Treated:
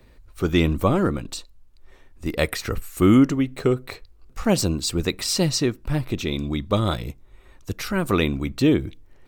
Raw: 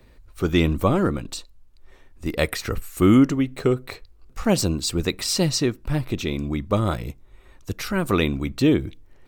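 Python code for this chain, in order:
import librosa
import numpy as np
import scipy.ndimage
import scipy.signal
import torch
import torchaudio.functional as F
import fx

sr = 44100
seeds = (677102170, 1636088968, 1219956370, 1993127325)

y = fx.peak_eq(x, sr, hz=3600.0, db=10.0, octaves=0.35, at=(6.32, 7.04))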